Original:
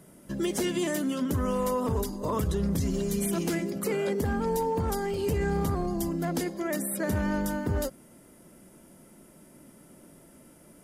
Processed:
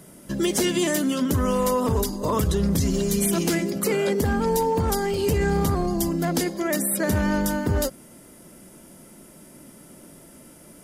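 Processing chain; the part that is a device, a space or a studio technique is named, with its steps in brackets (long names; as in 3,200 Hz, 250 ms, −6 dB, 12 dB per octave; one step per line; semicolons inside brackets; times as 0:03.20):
presence and air boost (parametric band 4,800 Hz +4 dB 1.8 octaves; high-shelf EQ 12,000 Hz +4.5 dB)
level +5.5 dB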